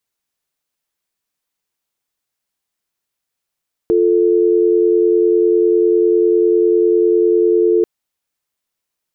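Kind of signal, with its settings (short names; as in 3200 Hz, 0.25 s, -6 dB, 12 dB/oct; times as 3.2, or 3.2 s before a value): call progress tone dial tone, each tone -12.5 dBFS 3.94 s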